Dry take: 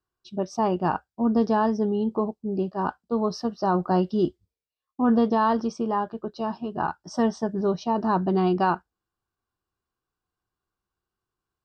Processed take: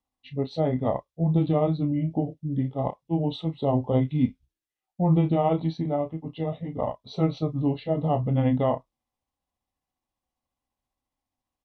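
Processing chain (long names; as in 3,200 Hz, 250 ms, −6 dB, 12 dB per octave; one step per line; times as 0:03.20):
pitch shift by two crossfaded delay taps −6 semitones
double-tracking delay 31 ms −11 dB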